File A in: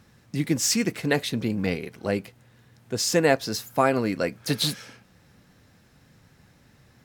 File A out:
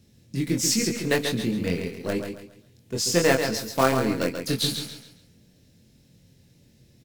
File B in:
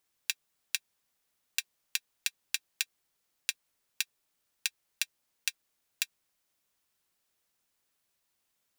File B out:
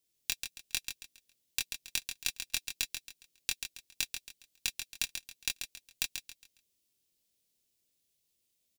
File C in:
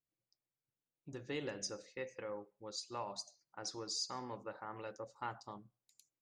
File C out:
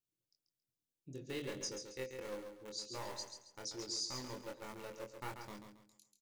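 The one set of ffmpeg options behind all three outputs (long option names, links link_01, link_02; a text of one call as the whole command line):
ffmpeg -i in.wav -filter_complex "[0:a]bandreject=frequency=760:width=12,acrossover=split=630|2400[link_01][link_02][link_03];[link_02]acrusher=bits=5:dc=4:mix=0:aa=0.000001[link_04];[link_01][link_04][link_03]amix=inputs=3:normalize=0,asplit=2[link_05][link_06];[link_06]adelay=23,volume=-3.5dB[link_07];[link_05][link_07]amix=inputs=2:normalize=0,aecho=1:1:137|274|411|548:0.447|0.143|0.0457|0.0146,volume=-1.5dB" out.wav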